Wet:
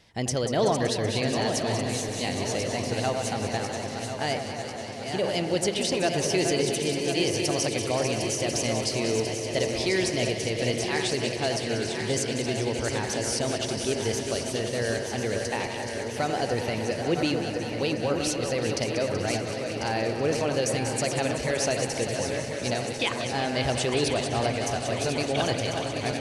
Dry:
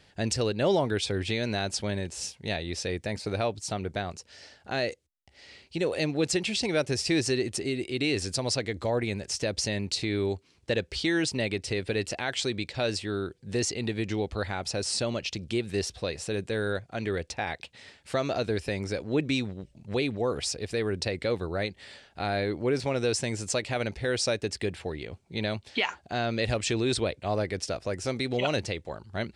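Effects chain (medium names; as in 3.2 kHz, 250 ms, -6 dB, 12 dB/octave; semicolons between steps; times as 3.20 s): backward echo that repeats 585 ms, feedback 76%, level -7 dB; echo whose repeats swap between lows and highs 106 ms, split 1.7 kHz, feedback 87%, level -8 dB; tape speed +12%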